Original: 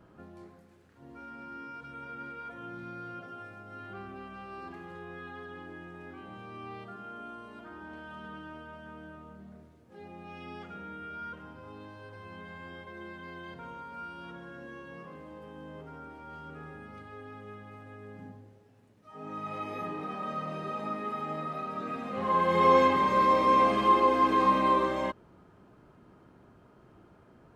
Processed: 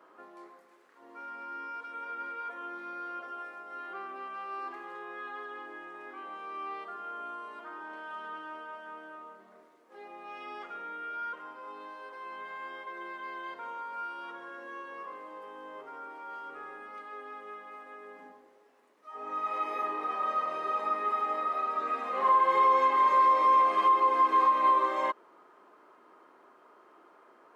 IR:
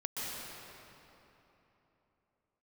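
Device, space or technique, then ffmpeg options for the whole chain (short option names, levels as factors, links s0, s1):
laptop speaker: -af "highpass=f=340:w=0.5412,highpass=f=340:w=1.3066,equalizer=f=1100:t=o:w=0.58:g=9,equalizer=f=2000:t=o:w=0.36:g=4.5,alimiter=limit=0.158:level=0:latency=1:release=484"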